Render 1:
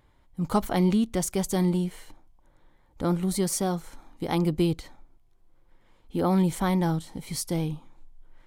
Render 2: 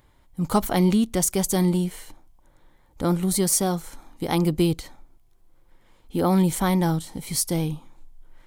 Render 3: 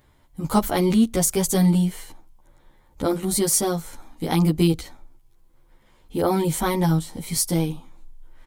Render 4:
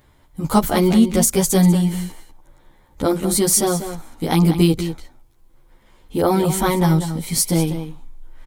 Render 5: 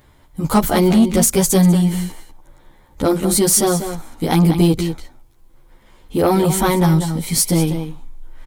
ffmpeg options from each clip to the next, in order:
ffmpeg -i in.wav -af "highshelf=frequency=6200:gain=8,volume=3dB" out.wav
ffmpeg -i in.wav -filter_complex "[0:a]asplit=2[link_01][link_02];[link_02]adelay=11.5,afreqshift=0.34[link_03];[link_01][link_03]amix=inputs=2:normalize=1,volume=4.5dB" out.wav
ffmpeg -i in.wav -filter_complex "[0:a]asplit=2[link_01][link_02];[link_02]adelay=192.4,volume=-10dB,highshelf=frequency=4000:gain=-4.33[link_03];[link_01][link_03]amix=inputs=2:normalize=0,volume=4dB" out.wav
ffmpeg -i in.wav -af "asoftclip=type=tanh:threshold=-9.5dB,volume=3.5dB" out.wav

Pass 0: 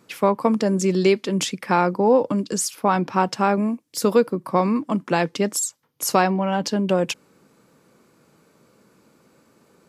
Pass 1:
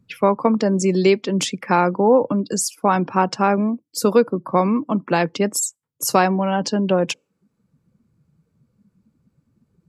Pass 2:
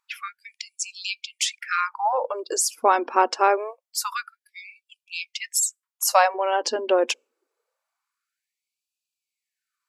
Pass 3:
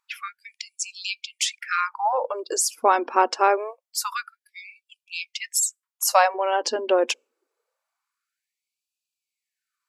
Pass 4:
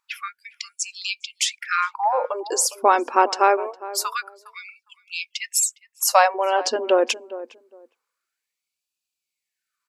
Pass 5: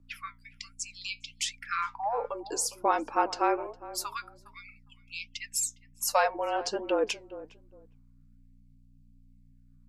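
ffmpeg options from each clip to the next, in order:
ffmpeg -i in.wav -filter_complex "[0:a]afftdn=noise_reduction=22:noise_floor=-40,acrossover=split=130|4400[link_01][link_02][link_03];[link_01]acompressor=mode=upward:threshold=-42dB:ratio=2.5[link_04];[link_04][link_02][link_03]amix=inputs=3:normalize=0,volume=2dB" out.wav
ffmpeg -i in.wav -af "equalizer=frequency=280:width_type=o:width=0.28:gain=-12,afftfilt=real='re*gte(b*sr/1024,220*pow(2400/220,0.5+0.5*sin(2*PI*0.25*pts/sr)))':imag='im*gte(b*sr/1024,220*pow(2400/220,0.5+0.5*sin(2*PI*0.25*pts/sr)))':win_size=1024:overlap=0.75" out.wav
ffmpeg -i in.wav -af anull out.wav
ffmpeg -i in.wav -filter_complex "[0:a]asplit=2[link_01][link_02];[link_02]adelay=409,lowpass=frequency=890:poles=1,volume=-14dB,asplit=2[link_03][link_04];[link_04]adelay=409,lowpass=frequency=890:poles=1,volume=0.21[link_05];[link_01][link_03][link_05]amix=inputs=3:normalize=0,volume=2dB" out.wav
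ffmpeg -i in.wav -af "aeval=exprs='val(0)+0.00501*(sin(2*PI*60*n/s)+sin(2*PI*2*60*n/s)/2+sin(2*PI*3*60*n/s)/3+sin(2*PI*4*60*n/s)/4+sin(2*PI*5*60*n/s)/5)':channel_layout=same,afreqshift=-34,flanger=delay=3.3:depth=5:regen=72:speed=1.3:shape=sinusoidal,volume=-5dB" out.wav

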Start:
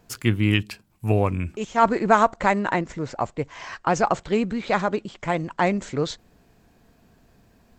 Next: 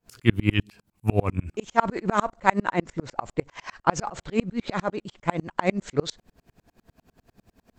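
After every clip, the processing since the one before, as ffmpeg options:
ffmpeg -i in.wav -af "aeval=exprs='val(0)*pow(10,-35*if(lt(mod(-10*n/s,1),2*abs(-10)/1000),1-mod(-10*n/s,1)/(2*abs(-10)/1000),(mod(-10*n/s,1)-2*abs(-10)/1000)/(1-2*abs(-10)/1000))/20)':channel_layout=same,volume=7dB" out.wav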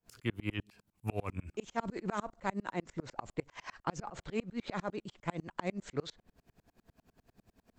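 ffmpeg -i in.wav -filter_complex "[0:a]acrossover=split=450|1300|3300[link_01][link_02][link_03][link_04];[link_01]acompressor=threshold=-28dB:ratio=4[link_05];[link_02]acompressor=threshold=-32dB:ratio=4[link_06];[link_03]acompressor=threshold=-38dB:ratio=4[link_07];[link_04]acompressor=threshold=-45dB:ratio=4[link_08];[link_05][link_06][link_07][link_08]amix=inputs=4:normalize=0,volume=-7dB" out.wav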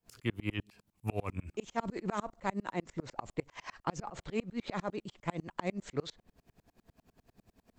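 ffmpeg -i in.wav -af "equalizer=frequency=1500:width=6.4:gain=-3.5,volume=1dB" out.wav

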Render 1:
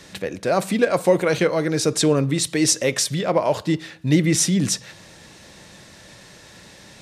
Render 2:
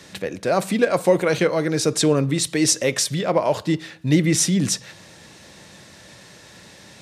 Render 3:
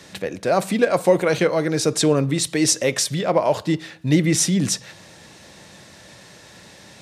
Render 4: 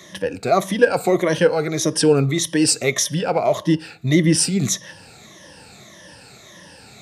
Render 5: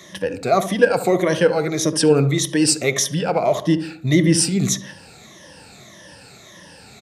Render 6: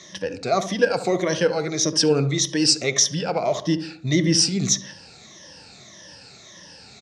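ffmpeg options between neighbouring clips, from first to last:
ffmpeg -i in.wav -af "highpass=63" out.wav
ffmpeg -i in.wav -af "equalizer=frequency=730:width_type=o:width=0.77:gain=2" out.wav
ffmpeg -i in.wav -af "afftfilt=real='re*pow(10,14/40*sin(2*PI*(1.2*log(max(b,1)*sr/1024/100)/log(2)-(-1.7)*(pts-256)/sr)))':imag='im*pow(10,14/40*sin(2*PI*(1.2*log(max(b,1)*sr/1024/100)/log(2)-(-1.7)*(pts-256)/sr)))':win_size=1024:overlap=0.75,volume=-1dB" out.wav
ffmpeg -i in.wav -filter_complex "[0:a]asplit=2[link_01][link_02];[link_02]adelay=72,lowpass=frequency=980:poles=1,volume=-10dB,asplit=2[link_03][link_04];[link_04]adelay=72,lowpass=frequency=980:poles=1,volume=0.46,asplit=2[link_05][link_06];[link_06]adelay=72,lowpass=frequency=980:poles=1,volume=0.46,asplit=2[link_07][link_08];[link_08]adelay=72,lowpass=frequency=980:poles=1,volume=0.46,asplit=2[link_09][link_10];[link_10]adelay=72,lowpass=frequency=980:poles=1,volume=0.46[link_11];[link_01][link_03][link_05][link_07][link_09][link_11]amix=inputs=6:normalize=0" out.wav
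ffmpeg -i in.wav -af "lowpass=frequency=5600:width_type=q:width=2.9,volume=-4.5dB" out.wav

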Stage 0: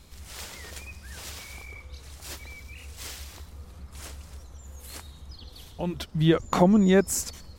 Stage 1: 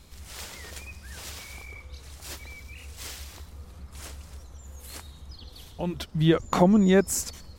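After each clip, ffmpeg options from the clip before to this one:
ffmpeg -i in.wav -af anull out.wav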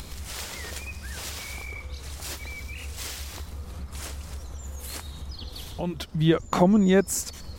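ffmpeg -i in.wav -af "acompressor=mode=upward:threshold=-28dB:ratio=2.5" out.wav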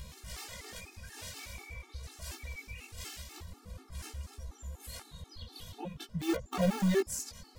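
ffmpeg -i in.wav -filter_complex "[0:a]asplit=2[link_01][link_02];[link_02]aeval=exprs='(mod(6.68*val(0)+1,2)-1)/6.68':channel_layout=same,volume=-6.5dB[link_03];[link_01][link_03]amix=inputs=2:normalize=0,flanger=delay=15:depth=7.9:speed=0.46,afftfilt=real='re*gt(sin(2*PI*4.1*pts/sr)*(1-2*mod(floor(b*sr/1024/230),2)),0)':imag='im*gt(sin(2*PI*4.1*pts/sr)*(1-2*mod(floor(b*sr/1024/230),2)),0)':win_size=1024:overlap=0.75,volume=-6dB" out.wav

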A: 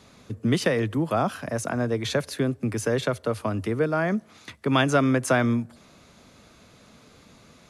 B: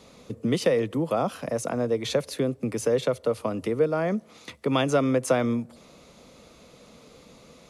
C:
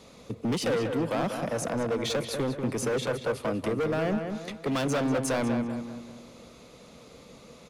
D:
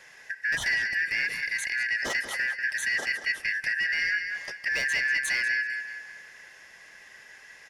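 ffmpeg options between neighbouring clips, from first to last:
ffmpeg -i in.wav -filter_complex "[0:a]equalizer=frequency=100:width_type=o:width=0.33:gain=-11,equalizer=frequency=500:width_type=o:width=0.33:gain=8,equalizer=frequency=1600:width_type=o:width=0.33:gain=-8,asplit=2[link_01][link_02];[link_02]acompressor=threshold=-29dB:ratio=6,volume=-1dB[link_03];[link_01][link_03]amix=inputs=2:normalize=0,volume=-4.5dB" out.wav
ffmpeg -i in.wav -filter_complex "[0:a]asoftclip=type=hard:threshold=-25dB,asplit=2[link_01][link_02];[link_02]adelay=191,lowpass=frequency=2800:poles=1,volume=-6dB,asplit=2[link_03][link_04];[link_04]adelay=191,lowpass=frequency=2800:poles=1,volume=0.46,asplit=2[link_05][link_06];[link_06]adelay=191,lowpass=frequency=2800:poles=1,volume=0.46,asplit=2[link_07][link_08];[link_08]adelay=191,lowpass=frequency=2800:poles=1,volume=0.46,asplit=2[link_09][link_10];[link_10]adelay=191,lowpass=frequency=2800:poles=1,volume=0.46,asplit=2[link_11][link_12];[link_12]adelay=191,lowpass=frequency=2800:poles=1,volume=0.46[link_13];[link_03][link_05][link_07][link_09][link_11][link_13]amix=inputs=6:normalize=0[link_14];[link_01][link_14]amix=inputs=2:normalize=0" out.wav
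ffmpeg -i in.wav -af "afftfilt=real='real(if(lt(b,272),68*(eq(floor(b/68),0)*2+eq(floor(b/68),1)*0+eq(floor(b/68),2)*3+eq(floor(b/68),3)*1)+mod(b,68),b),0)':imag='imag(if(lt(b,272),68*(eq(floor(b/68),0)*2+eq(floor(b/68),1)*0+eq(floor(b/68),2)*3+eq(floor(b/68),3)*1)+mod(b,68),b),0)':win_size=2048:overlap=0.75" out.wav

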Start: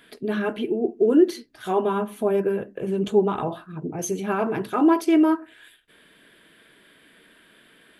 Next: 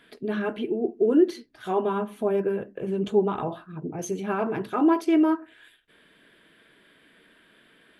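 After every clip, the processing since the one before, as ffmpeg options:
ffmpeg -i in.wav -af "highshelf=frequency=7000:gain=-9,volume=-2.5dB" out.wav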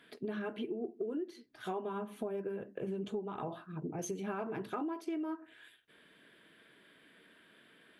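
ffmpeg -i in.wav -af "highpass=80,acompressor=threshold=-30dB:ratio=16,volume=-4.5dB" out.wav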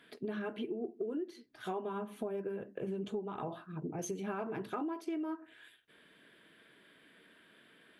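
ffmpeg -i in.wav -af anull out.wav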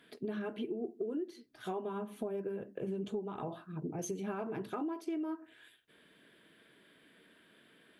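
ffmpeg -i in.wav -af "equalizer=frequency=1600:width=0.53:gain=-3.5,volume=1dB" out.wav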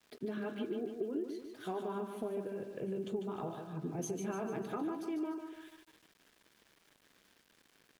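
ffmpeg -i in.wav -af "aecho=1:1:148|296|444|592|740|888:0.447|0.219|0.107|0.0526|0.0258|0.0126,aeval=exprs='val(0)*gte(abs(val(0)),0.00133)':channel_layout=same,volume=-1dB" out.wav

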